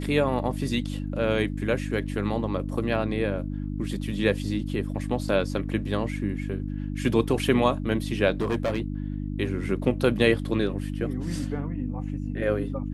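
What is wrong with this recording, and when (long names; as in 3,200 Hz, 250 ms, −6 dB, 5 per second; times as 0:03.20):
mains hum 50 Hz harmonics 6 −31 dBFS
0:08.41–0:08.82: clipping −21 dBFS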